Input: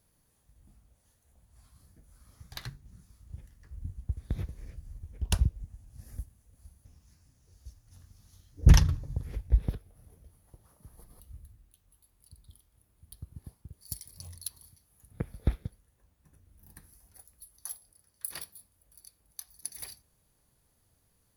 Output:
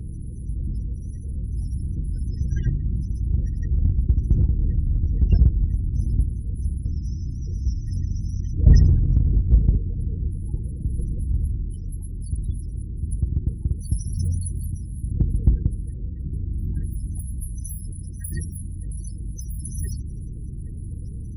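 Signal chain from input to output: spectral levelling over time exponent 0.4; Chebyshev shaper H 2 -29 dB, 4 -19 dB, 6 -16 dB, 8 -21 dB, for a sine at -4 dBFS; graphic EQ with 31 bands 160 Hz -3 dB, 1 kHz -9 dB, 8 kHz -5 dB; loudest bins only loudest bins 16; in parallel at -7 dB: hard clipper -20 dBFS, distortion -8 dB; on the sum: trim +1.5 dB

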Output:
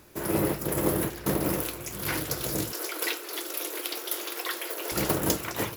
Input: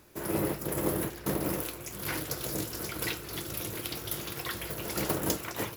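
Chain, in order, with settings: 2.72–4.92 s: steep high-pass 330 Hz 36 dB/octave; trim +4 dB

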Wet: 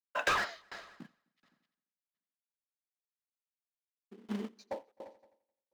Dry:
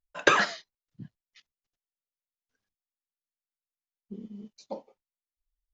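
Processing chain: high-pass 210 Hz 24 dB/octave; expander -47 dBFS; level rider gain up to 6.5 dB; in parallel at -3.5 dB: companded quantiser 4-bit; on the sum: overdrive pedal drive 17 dB, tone 1.9 kHz, clips at -1 dBFS; hard clipper -13 dBFS, distortion -10 dB; multi-head delay 86 ms, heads first and third, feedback 41%, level -23 dB; sawtooth tremolo in dB decaying 1.4 Hz, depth 30 dB

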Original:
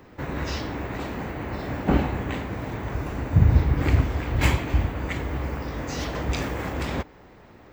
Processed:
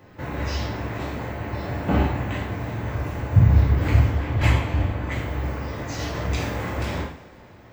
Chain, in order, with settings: 4.09–5.12 s: treble shelf 6.2 kHz -10 dB; two-slope reverb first 0.54 s, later 3 s, from -22 dB, DRR -3.5 dB; trim -4 dB

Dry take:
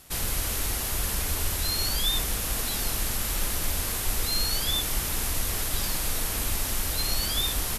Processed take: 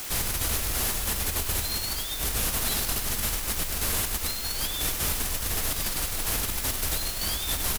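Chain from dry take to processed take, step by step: compressor with a negative ratio -29 dBFS, ratio -0.5; word length cut 6-bit, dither triangular; on a send: delay 100 ms -9 dB

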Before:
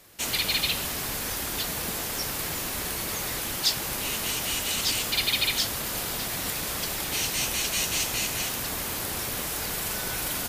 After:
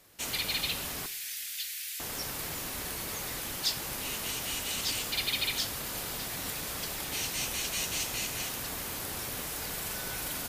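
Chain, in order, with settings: 1.06–2.00 s: inverse Chebyshev high-pass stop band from 960 Hz, stop band 40 dB; reverberation, pre-delay 3 ms, DRR 14 dB; trim -6 dB

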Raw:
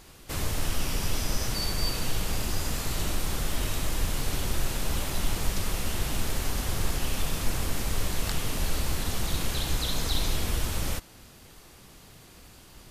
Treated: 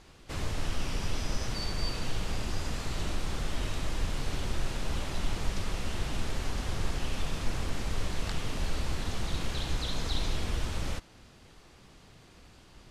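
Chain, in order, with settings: distance through air 70 m; trim -3 dB

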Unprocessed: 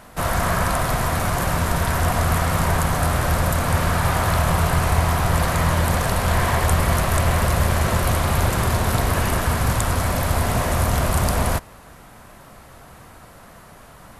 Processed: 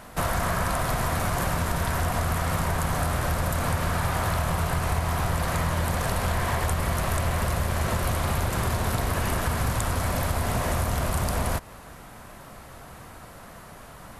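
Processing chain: compression, threshold -22 dBFS, peak gain reduction 9 dB

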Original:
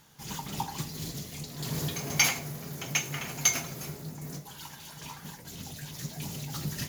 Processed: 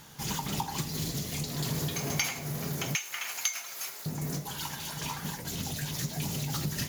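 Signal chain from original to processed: compression 4:1, threshold -38 dBFS, peak gain reduction 16 dB; 2.95–4.06 s: high-pass 1.1 kHz 12 dB/octave; trim +8 dB

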